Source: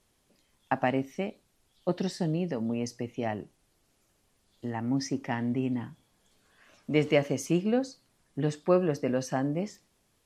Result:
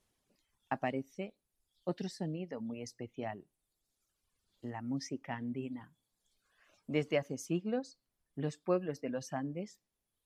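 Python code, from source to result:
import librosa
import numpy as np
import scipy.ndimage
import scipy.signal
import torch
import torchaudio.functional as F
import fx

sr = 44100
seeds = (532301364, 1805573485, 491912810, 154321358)

y = fx.dereverb_blind(x, sr, rt60_s=1.4)
y = y * librosa.db_to_amplitude(-7.5)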